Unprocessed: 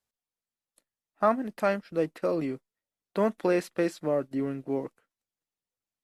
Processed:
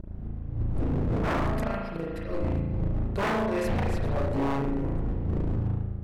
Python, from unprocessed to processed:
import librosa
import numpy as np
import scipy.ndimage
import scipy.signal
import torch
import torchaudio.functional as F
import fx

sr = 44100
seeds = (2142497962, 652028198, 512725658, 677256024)

y = fx.dmg_wind(x, sr, seeds[0], corner_hz=110.0, level_db=-26.0)
y = fx.auto_swell(y, sr, attack_ms=227.0)
y = y + 10.0 ** (-19.5 / 20.0) * np.pad(y, (int(405 * sr / 1000.0), 0))[:len(y)]
y = fx.rev_spring(y, sr, rt60_s=1.3, pass_ms=(36,), chirp_ms=45, drr_db=-4.5)
y = 10.0 ** (-21.0 / 20.0) * (np.abs((y / 10.0 ** (-21.0 / 20.0) + 3.0) % 4.0 - 2.0) - 1.0)